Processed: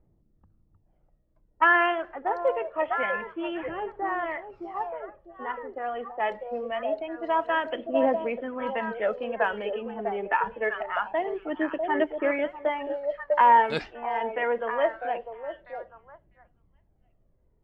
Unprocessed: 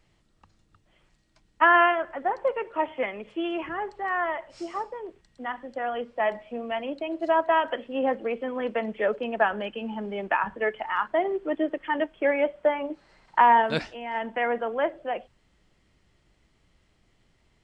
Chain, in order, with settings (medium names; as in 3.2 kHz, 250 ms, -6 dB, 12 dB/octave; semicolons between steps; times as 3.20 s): repeats whose band climbs or falls 649 ms, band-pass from 560 Hz, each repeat 1.4 oct, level -4 dB; level-controlled noise filter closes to 580 Hz, open at -18.5 dBFS; phaser 0.25 Hz, delay 2.7 ms, feedback 42%; trim -2.5 dB